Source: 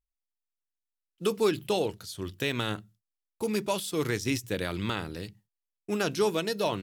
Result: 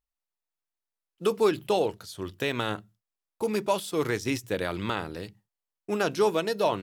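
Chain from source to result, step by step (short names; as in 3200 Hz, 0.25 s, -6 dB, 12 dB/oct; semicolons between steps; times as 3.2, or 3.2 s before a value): bell 790 Hz +7.5 dB 2.5 oct; gain -2.5 dB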